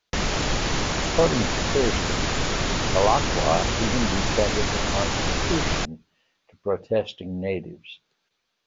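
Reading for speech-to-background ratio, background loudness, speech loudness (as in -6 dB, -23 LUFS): -2.5 dB, -24.5 LUFS, -27.0 LUFS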